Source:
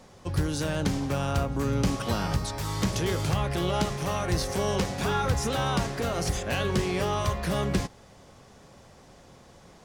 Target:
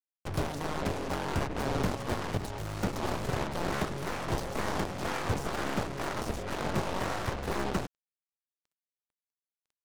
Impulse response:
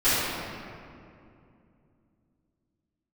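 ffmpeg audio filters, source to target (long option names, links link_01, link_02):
-filter_complex "[0:a]acrossover=split=970[link_01][link_02];[link_02]acompressor=threshold=-47dB:ratio=10[link_03];[link_01][link_03]amix=inputs=2:normalize=0,acrusher=bits=5:mix=0:aa=0.5,aeval=exprs='0.168*(cos(1*acos(clip(val(0)/0.168,-1,1)))-cos(1*PI/2))+0.075*(cos(7*acos(clip(val(0)/0.168,-1,1)))-cos(7*PI/2))+0.0211*(cos(8*acos(clip(val(0)/0.168,-1,1)))-cos(8*PI/2))':channel_layout=same,volume=-6.5dB"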